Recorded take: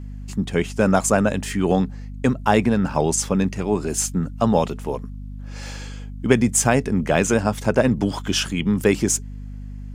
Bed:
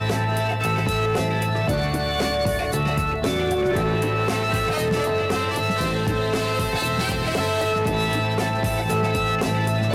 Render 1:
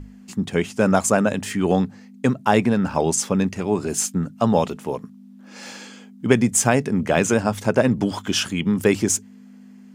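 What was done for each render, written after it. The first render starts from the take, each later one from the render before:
mains-hum notches 50/100/150 Hz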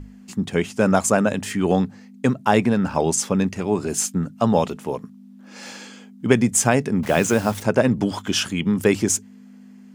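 0:07.03–0:07.63: bit-depth reduction 6 bits, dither none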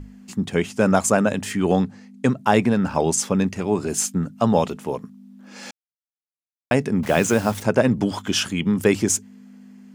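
0:01.76–0:02.37: Butterworth low-pass 12,000 Hz
0:05.71–0:06.71: silence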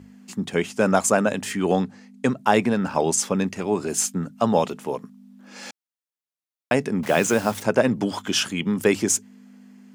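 high-pass filter 80 Hz
low-shelf EQ 140 Hz −10 dB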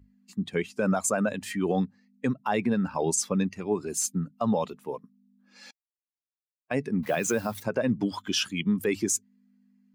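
spectral dynamics exaggerated over time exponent 1.5
brickwall limiter −16 dBFS, peak gain reduction 9.5 dB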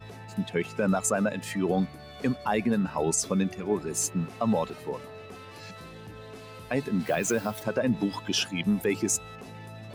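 mix in bed −21.5 dB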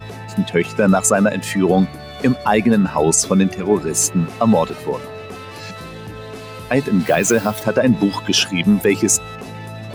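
level +11.5 dB

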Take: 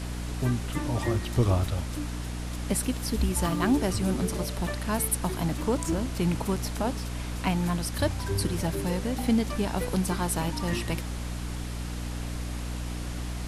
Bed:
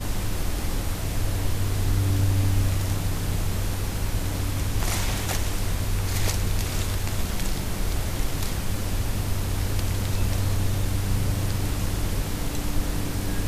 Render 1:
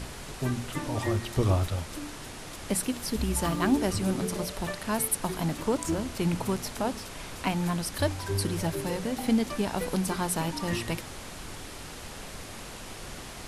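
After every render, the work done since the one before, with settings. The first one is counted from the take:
mains-hum notches 60/120/180/240/300 Hz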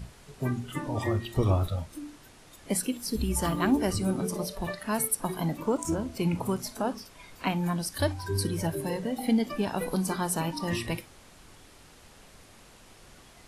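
noise reduction from a noise print 12 dB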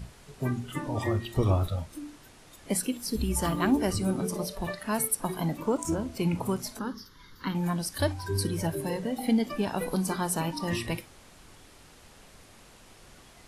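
0:06.79–0:07.55: phaser with its sweep stopped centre 2,500 Hz, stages 6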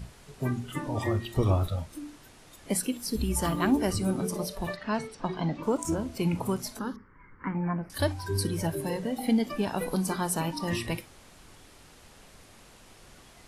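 0:04.76–0:05.63: low-pass filter 5,200 Hz 24 dB per octave
0:06.96–0:07.90: elliptic low-pass filter 2,300 Hz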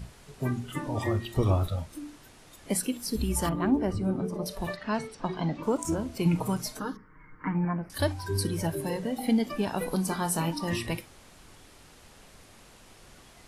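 0:03.49–0:04.46: low-pass filter 1,000 Hz 6 dB per octave
0:06.25–0:07.65: comb filter 6.5 ms
0:10.10–0:10.60: double-tracking delay 24 ms −8 dB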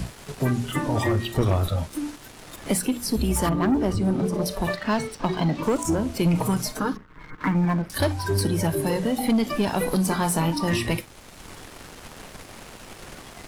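leveller curve on the samples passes 2
multiband upward and downward compressor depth 40%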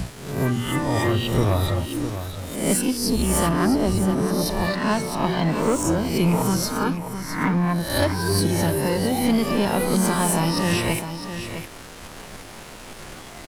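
peak hold with a rise ahead of every peak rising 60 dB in 0.69 s
single-tap delay 658 ms −9.5 dB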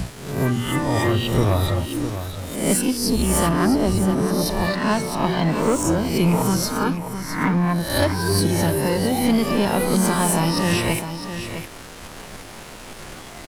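level +1.5 dB

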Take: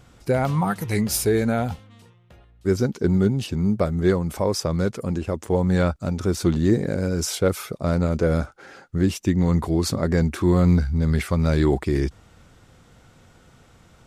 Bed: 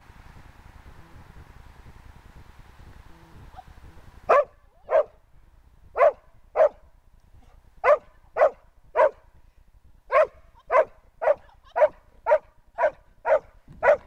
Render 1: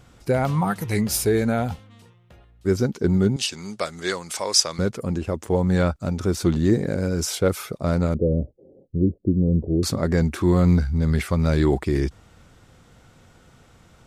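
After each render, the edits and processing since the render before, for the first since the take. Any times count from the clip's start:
0:03.36–0:04.79: meter weighting curve ITU-R 468
0:08.14–0:09.83: Butterworth low-pass 560 Hz 48 dB per octave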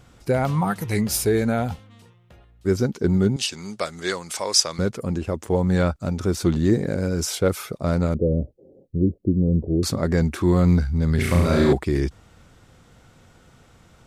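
0:11.15–0:11.73: flutter between parallel walls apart 5.9 metres, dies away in 1.1 s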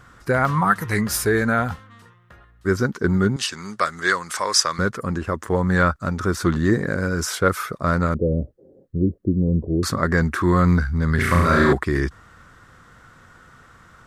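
flat-topped bell 1,400 Hz +11.5 dB 1.1 octaves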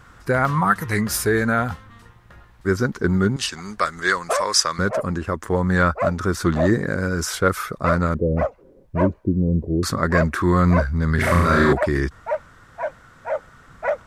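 mix in bed −4.5 dB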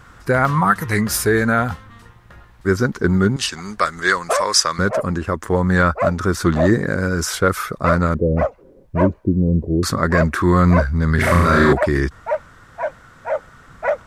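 level +3 dB
brickwall limiter −2 dBFS, peak gain reduction 2 dB

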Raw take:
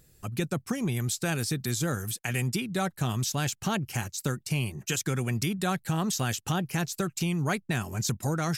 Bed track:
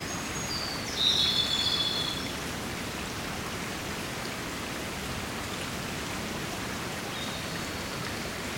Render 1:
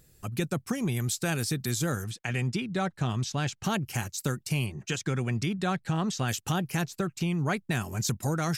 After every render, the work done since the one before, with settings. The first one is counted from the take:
0:02.04–0:03.64: high-frequency loss of the air 92 metres
0:04.66–0:06.28: high-frequency loss of the air 83 metres
0:06.83–0:07.56: high-shelf EQ 3,800 Hz → 7,100 Hz −11.5 dB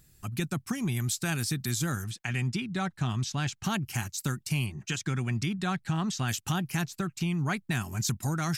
parametric band 500 Hz −11 dB 0.74 octaves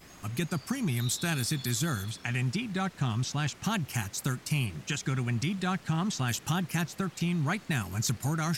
mix in bed track −18 dB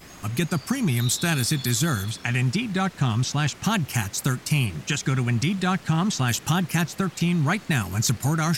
level +7 dB

